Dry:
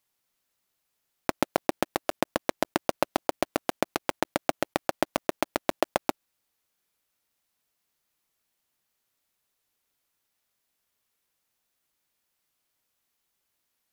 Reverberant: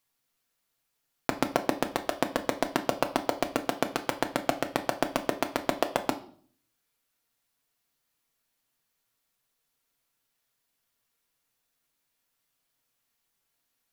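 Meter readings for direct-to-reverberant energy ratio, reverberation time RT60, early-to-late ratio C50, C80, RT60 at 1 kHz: 4.5 dB, 0.50 s, 14.5 dB, 18.5 dB, 0.45 s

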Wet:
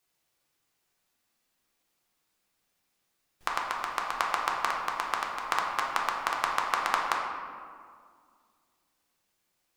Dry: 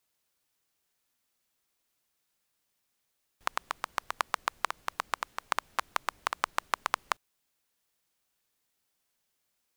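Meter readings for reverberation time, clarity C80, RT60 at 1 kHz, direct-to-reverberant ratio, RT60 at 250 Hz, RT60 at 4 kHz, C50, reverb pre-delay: 2.0 s, 3.5 dB, 2.0 s, -2.0 dB, 2.6 s, 1.0 s, 2.0 dB, 3 ms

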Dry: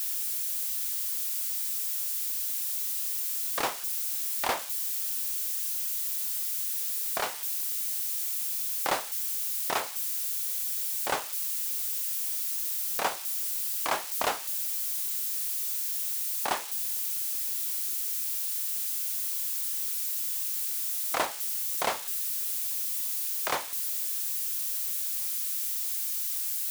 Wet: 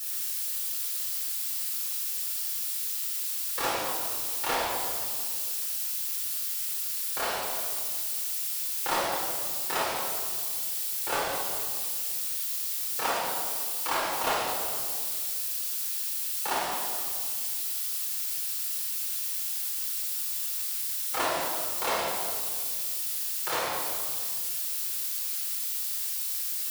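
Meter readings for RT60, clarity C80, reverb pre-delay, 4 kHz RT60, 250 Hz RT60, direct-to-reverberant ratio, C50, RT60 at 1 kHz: 2.0 s, 0.5 dB, 8 ms, 1.6 s, 2.4 s, -6.5 dB, -1.0 dB, 1.8 s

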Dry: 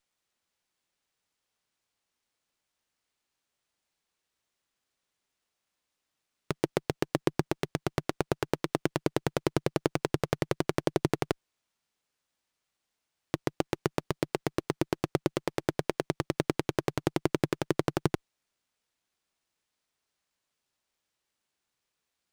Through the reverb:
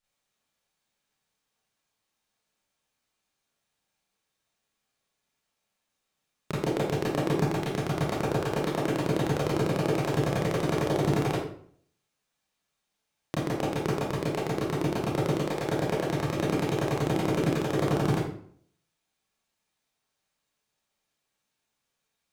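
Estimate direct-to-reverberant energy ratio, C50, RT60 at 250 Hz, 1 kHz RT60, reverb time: -7.5 dB, 1.5 dB, 0.60 s, 0.55 s, 0.55 s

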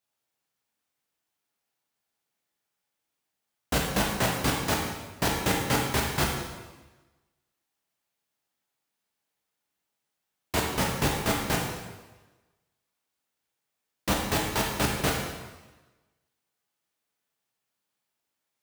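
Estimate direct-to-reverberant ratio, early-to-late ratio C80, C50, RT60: -1.5 dB, 4.5 dB, 2.0 dB, 1.2 s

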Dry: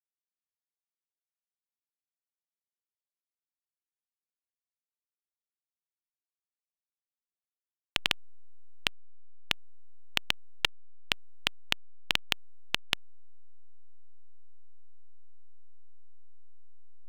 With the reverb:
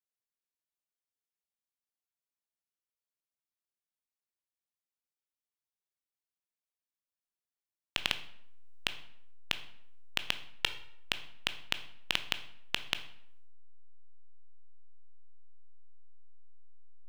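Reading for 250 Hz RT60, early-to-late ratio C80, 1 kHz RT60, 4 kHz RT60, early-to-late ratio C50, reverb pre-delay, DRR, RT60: 0.80 s, 16.0 dB, 0.70 s, 0.50 s, 13.0 dB, 15 ms, 9.5 dB, 0.70 s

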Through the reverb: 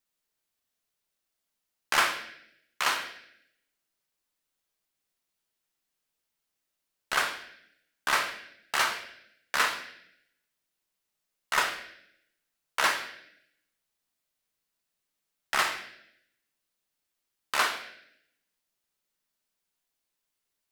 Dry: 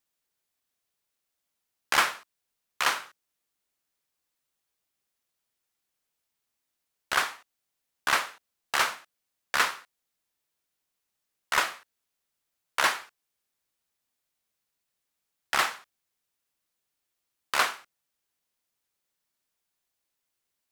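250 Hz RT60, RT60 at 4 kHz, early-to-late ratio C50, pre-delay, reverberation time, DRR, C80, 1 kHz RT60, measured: 1.0 s, 0.75 s, 8.5 dB, 3 ms, 0.75 s, 4.0 dB, 11.5 dB, 0.70 s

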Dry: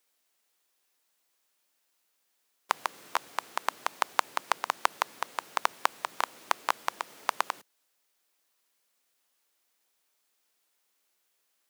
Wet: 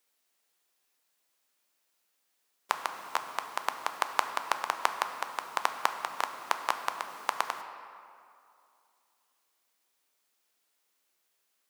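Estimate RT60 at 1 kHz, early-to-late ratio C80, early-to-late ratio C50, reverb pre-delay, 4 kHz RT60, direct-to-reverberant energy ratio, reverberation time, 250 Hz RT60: 2.6 s, 9.5 dB, 8.5 dB, 8 ms, 1.5 s, 7.0 dB, 2.5 s, 2.3 s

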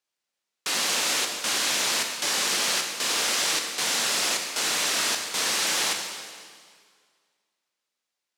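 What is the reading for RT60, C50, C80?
1.9 s, 4.5 dB, 5.5 dB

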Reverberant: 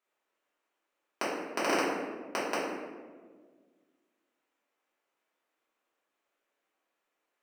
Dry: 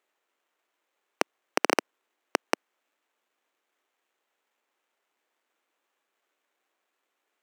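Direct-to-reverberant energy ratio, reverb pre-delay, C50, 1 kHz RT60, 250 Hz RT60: -9.5 dB, 3 ms, 0.5 dB, 1.3 s, 2.1 s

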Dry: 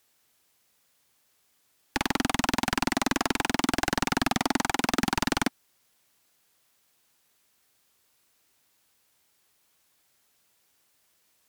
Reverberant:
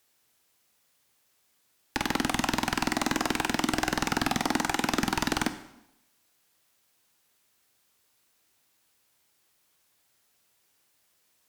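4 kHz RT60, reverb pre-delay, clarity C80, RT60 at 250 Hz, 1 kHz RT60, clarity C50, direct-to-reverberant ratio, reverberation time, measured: 0.75 s, 6 ms, 14.5 dB, 0.85 s, 0.80 s, 12.5 dB, 9.5 dB, 0.85 s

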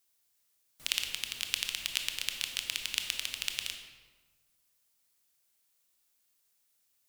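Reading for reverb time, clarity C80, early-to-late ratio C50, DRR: 1.4 s, 7.5 dB, 6.0 dB, 4.5 dB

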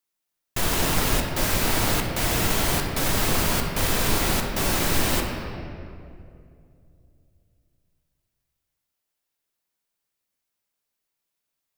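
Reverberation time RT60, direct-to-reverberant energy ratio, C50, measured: 2.5 s, 1.0 dB, 3.0 dB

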